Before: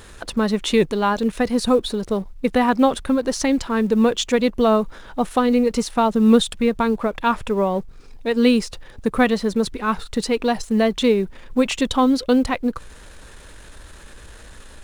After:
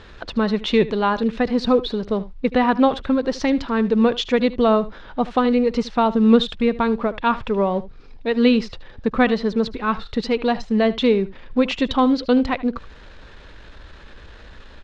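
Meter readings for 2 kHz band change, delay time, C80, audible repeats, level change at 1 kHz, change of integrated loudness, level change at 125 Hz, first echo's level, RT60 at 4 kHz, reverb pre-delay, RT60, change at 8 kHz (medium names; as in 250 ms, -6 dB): 0.0 dB, 76 ms, no reverb, 1, 0.0 dB, 0.0 dB, 0.0 dB, -17.5 dB, no reverb, no reverb, no reverb, under -10 dB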